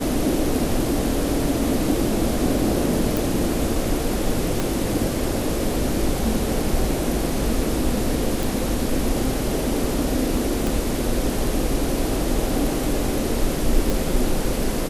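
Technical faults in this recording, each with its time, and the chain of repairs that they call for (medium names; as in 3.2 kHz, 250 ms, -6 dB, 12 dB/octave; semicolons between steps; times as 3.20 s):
3.17 s: pop
4.60 s: pop
8.43 s: pop
10.67 s: pop
13.90 s: pop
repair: de-click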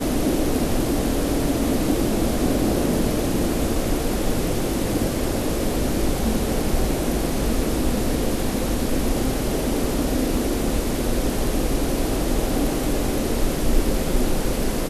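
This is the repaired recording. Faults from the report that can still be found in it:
4.60 s: pop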